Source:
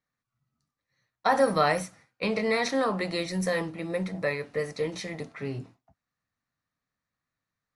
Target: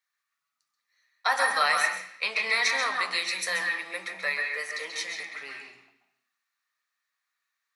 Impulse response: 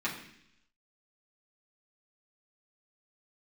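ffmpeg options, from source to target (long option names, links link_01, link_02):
-filter_complex "[0:a]highpass=1400,asplit=2[link_01][link_02];[1:a]atrim=start_sample=2205,adelay=130[link_03];[link_02][link_03]afir=irnorm=-1:irlink=0,volume=-8dB[link_04];[link_01][link_04]amix=inputs=2:normalize=0,volume=5.5dB"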